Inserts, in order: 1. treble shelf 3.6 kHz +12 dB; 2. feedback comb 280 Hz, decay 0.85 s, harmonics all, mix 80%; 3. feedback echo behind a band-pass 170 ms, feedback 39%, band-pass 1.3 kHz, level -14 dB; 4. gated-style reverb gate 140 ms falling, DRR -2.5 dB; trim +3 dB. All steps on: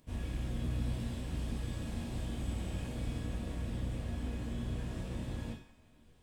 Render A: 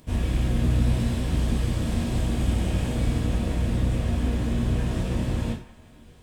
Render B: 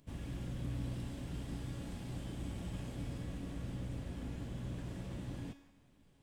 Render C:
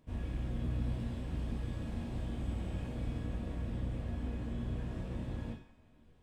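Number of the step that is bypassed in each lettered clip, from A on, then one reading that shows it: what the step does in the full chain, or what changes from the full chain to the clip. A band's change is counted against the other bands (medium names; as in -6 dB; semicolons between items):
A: 2, loudness change +13.5 LU; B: 4, loudness change -4.0 LU; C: 1, 8 kHz band -9.5 dB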